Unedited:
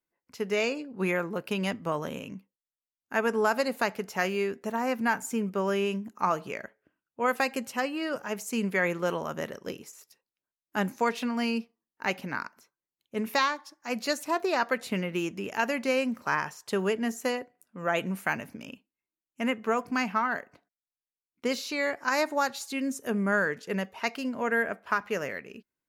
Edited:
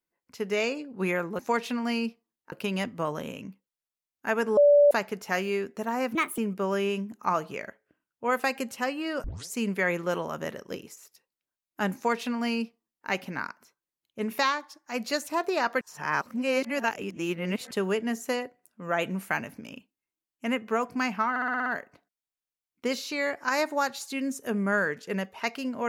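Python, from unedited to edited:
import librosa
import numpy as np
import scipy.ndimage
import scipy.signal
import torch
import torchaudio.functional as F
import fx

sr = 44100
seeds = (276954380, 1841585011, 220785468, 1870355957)

y = fx.edit(x, sr, fx.bleep(start_s=3.44, length_s=0.34, hz=580.0, db=-14.0),
    fx.speed_span(start_s=5.02, length_s=0.32, speed=1.39),
    fx.tape_start(start_s=8.2, length_s=0.27),
    fx.duplicate(start_s=10.91, length_s=1.13, to_s=1.39),
    fx.reverse_span(start_s=14.77, length_s=1.9),
    fx.stutter(start_s=20.26, slice_s=0.06, count=7), tone=tone)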